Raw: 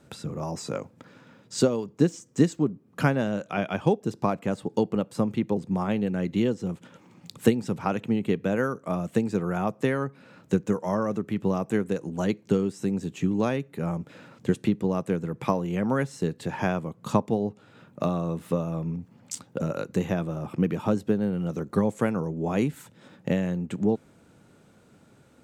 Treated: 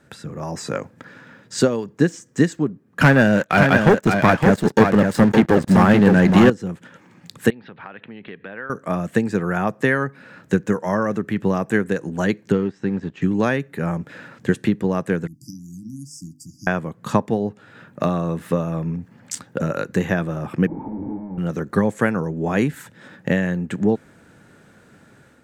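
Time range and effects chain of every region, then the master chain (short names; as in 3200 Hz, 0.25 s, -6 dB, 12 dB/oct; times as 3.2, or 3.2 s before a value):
3.01–6.5 sample leveller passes 3 + echo 0.565 s -5 dB
7.5–8.7 steep low-pass 4000 Hz 48 dB/oct + low shelf 410 Hz -11 dB + compressor 3:1, threshold -41 dBFS
12.52–13.22 G.711 law mismatch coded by A + air absorption 180 m
15.27–16.67 brick-wall FIR band-stop 320–4600 Hz + resonant low shelf 360 Hz -11 dB, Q 1.5 + notches 50/100/150/200/250/300/350 Hz
20.67–21.38 infinite clipping + vocal tract filter u + doubler 32 ms -7 dB
whole clip: bell 1700 Hz +11 dB 0.47 oct; AGC gain up to 5.5 dB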